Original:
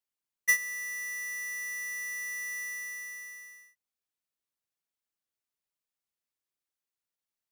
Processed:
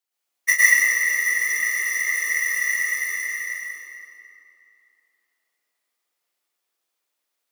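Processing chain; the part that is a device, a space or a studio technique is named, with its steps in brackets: whispering ghost (whisper effect; high-pass 340 Hz 12 dB/octave; reverberation RT60 2.8 s, pre-delay 99 ms, DRR -8.5 dB); 1.26–1.76 s: bass shelf 140 Hz +11.5 dB; trim +5 dB

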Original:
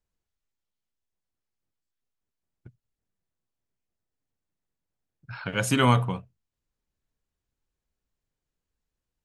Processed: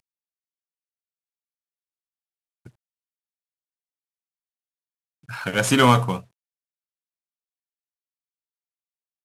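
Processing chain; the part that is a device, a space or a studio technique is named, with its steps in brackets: early wireless headset (high-pass 170 Hz 6 dB/octave; CVSD coder 64 kbps); trim +7 dB

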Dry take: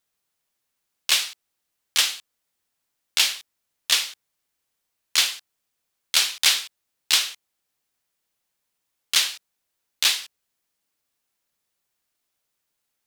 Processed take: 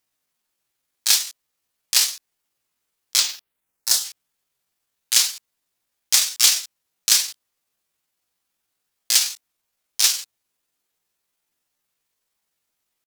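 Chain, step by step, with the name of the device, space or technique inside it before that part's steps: chipmunk voice (pitch shift +7 st); 3.18–4.03 s: peaking EQ 13 kHz -> 2.1 kHz -13 dB 0.77 oct; trim +3.5 dB

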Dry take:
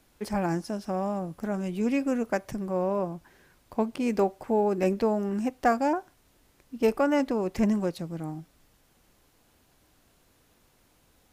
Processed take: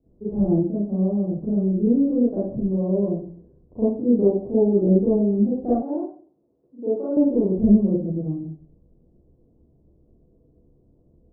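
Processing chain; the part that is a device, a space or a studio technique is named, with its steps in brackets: next room (low-pass 480 Hz 24 dB/octave; reverberation RT60 0.45 s, pre-delay 35 ms, DRR -10.5 dB); 5.82–7.17 s: frequency weighting A; trim -3 dB

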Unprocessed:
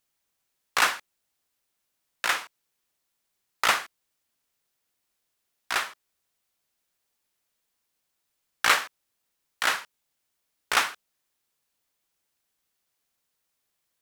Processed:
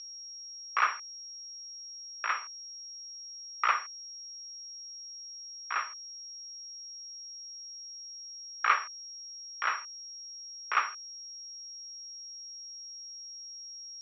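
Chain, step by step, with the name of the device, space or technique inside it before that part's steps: toy sound module (decimation joined by straight lines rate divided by 4×; class-D stage that switches slowly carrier 5.6 kHz; cabinet simulation 640–4600 Hz, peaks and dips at 720 Hz -5 dB, 1.2 kHz +10 dB, 2.4 kHz +5 dB, 4.4 kHz +3 dB); trim -7 dB

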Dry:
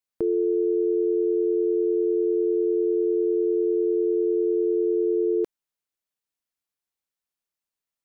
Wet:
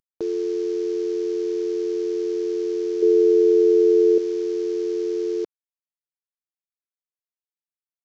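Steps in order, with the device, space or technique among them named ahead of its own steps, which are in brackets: early wireless headset (high-pass 260 Hz 6 dB/octave; CVSD coder 32 kbps); 3.02–4.18 s: peaking EQ 410 Hz +11 dB 0.7 oct

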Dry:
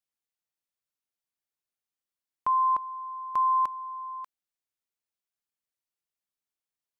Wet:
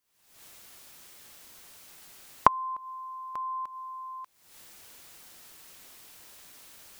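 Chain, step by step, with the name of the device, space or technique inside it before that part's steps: cheap recorder with automatic gain (white noise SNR 38 dB; recorder AGC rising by 70 dB/s); trim -10.5 dB

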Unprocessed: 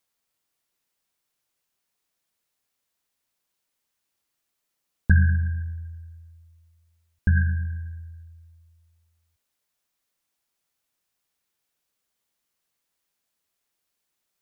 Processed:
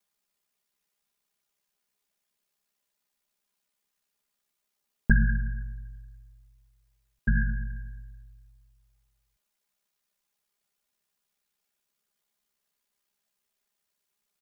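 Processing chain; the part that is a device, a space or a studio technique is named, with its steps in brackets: ring-modulated robot voice (ring modulator 33 Hz; comb 4.9 ms, depth 91%); trim -1.5 dB

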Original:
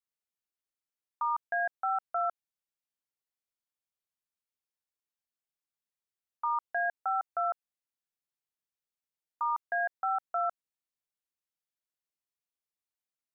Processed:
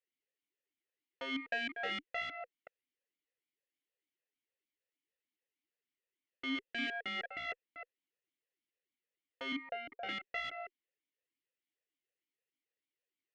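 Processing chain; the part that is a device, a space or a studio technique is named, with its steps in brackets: chunks repeated in reverse 191 ms, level -11 dB; 9.52–10.09 s: steep low-pass 1.2 kHz 48 dB/octave; talk box (valve stage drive 34 dB, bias 0.6; talking filter e-i 3.3 Hz); trim +17.5 dB

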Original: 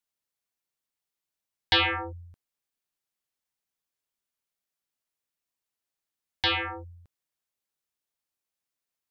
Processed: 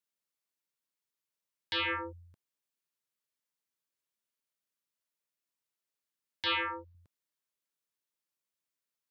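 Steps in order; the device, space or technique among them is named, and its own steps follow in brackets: PA system with an anti-feedback notch (high-pass 120 Hz; Butterworth band-stop 760 Hz, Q 5.4; peak limiter -23 dBFS, peak gain reduction 10.5 dB); 6.46–6.95 s: ten-band graphic EQ 125 Hz -9 dB, 1 kHz +5 dB, 4 kHz +4 dB, 8 kHz -10 dB; trim -3 dB

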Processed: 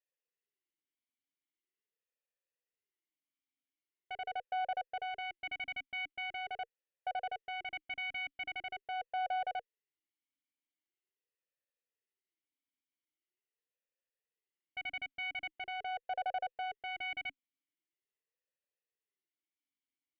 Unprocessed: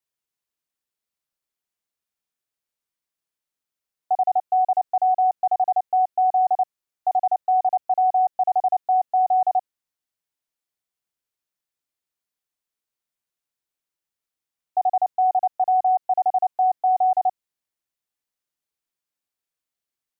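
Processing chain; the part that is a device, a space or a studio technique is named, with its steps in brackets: talk box (valve stage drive 21 dB, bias 0.5; talking filter e-i 0.43 Hz); trim +7 dB

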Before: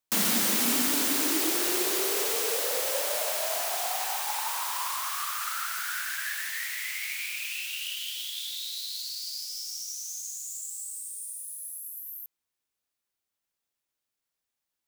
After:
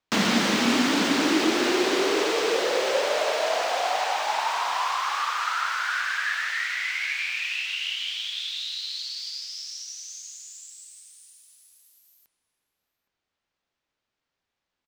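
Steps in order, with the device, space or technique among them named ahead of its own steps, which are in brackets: shout across a valley (distance through air 160 m; echo from a far wall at 140 m, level -10 dB); trim +9 dB

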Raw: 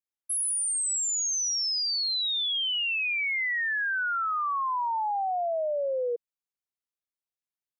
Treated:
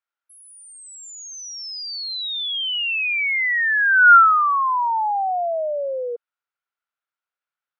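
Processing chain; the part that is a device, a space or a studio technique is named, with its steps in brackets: tin-can telephone (band-pass 650–2700 Hz; small resonant body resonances 1.4 kHz, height 13 dB, ringing for 20 ms); trim +8 dB

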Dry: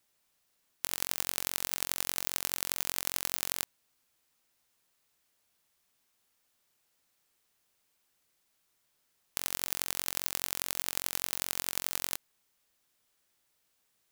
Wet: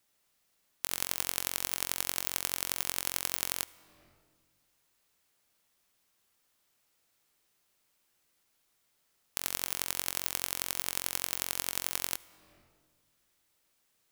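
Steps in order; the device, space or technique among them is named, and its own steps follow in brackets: compressed reverb return (on a send at -4 dB: reverberation RT60 1.3 s, pre-delay 68 ms + compression 12:1, threshold -50 dBFS, peak gain reduction 16.5 dB)

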